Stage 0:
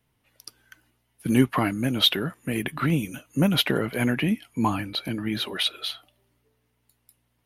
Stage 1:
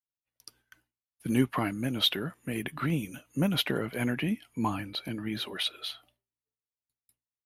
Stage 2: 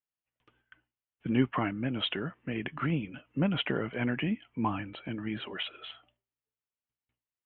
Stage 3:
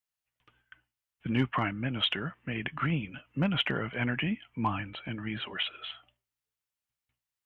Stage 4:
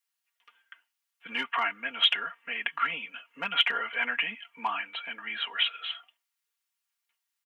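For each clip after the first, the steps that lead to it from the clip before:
downward expander −52 dBFS; level −6 dB
elliptic low-pass filter 3,100 Hz, stop band 40 dB
in parallel at −4 dB: asymmetric clip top −22 dBFS, bottom −18 dBFS; on the sum: parametric band 360 Hz −8 dB 2 octaves
high-pass filter 980 Hz 12 dB per octave; comb filter 4.3 ms, depth 83%; level +4 dB

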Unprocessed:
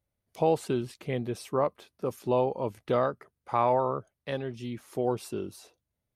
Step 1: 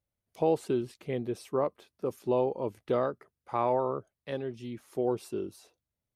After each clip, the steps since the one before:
dynamic equaliser 360 Hz, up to +6 dB, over −40 dBFS, Q 1.2
level −5 dB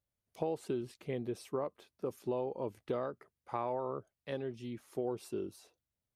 downward compressor 4 to 1, threshold −29 dBFS, peak gain reduction 7.5 dB
level −3 dB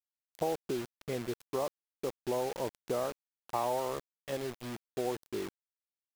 dynamic equaliser 750 Hz, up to +6 dB, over −48 dBFS, Q 1.5
bit reduction 7 bits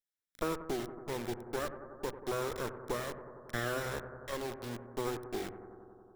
lower of the sound and its delayed copy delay 0.54 ms
mains-hum notches 50/100/150/200/250 Hz
bucket-brigade delay 92 ms, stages 1,024, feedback 80%, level −12 dB

